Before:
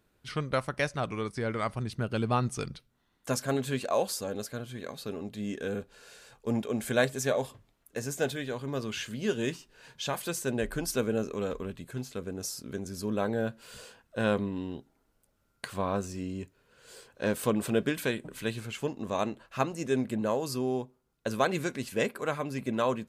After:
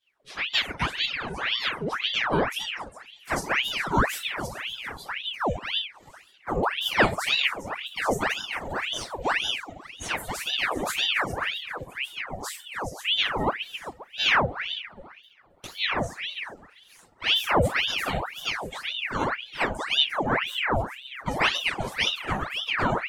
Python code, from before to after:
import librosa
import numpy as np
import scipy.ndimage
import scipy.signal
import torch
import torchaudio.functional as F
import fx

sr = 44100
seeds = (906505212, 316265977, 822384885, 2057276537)

y = fx.echo_heads(x, sr, ms=133, heads='all three', feedback_pct=51, wet_db=-15.5)
y = fx.room_shoebox(y, sr, seeds[0], volume_m3=570.0, walls='furnished', distance_m=9.0)
y = fx.dereverb_blind(y, sr, rt60_s=0.84)
y = fx.low_shelf(y, sr, hz=260.0, db=10.5, at=(7.43, 8.24))
y = fx.noise_reduce_blind(y, sr, reduce_db=9)
y = fx.peak_eq(y, sr, hz=6100.0, db=-11.5, octaves=1.5, at=(20.26, 20.73))
y = fx.ring_lfo(y, sr, carrier_hz=1800.0, swing_pct=85, hz=1.9)
y = F.gain(torch.from_numpy(y), -6.0).numpy()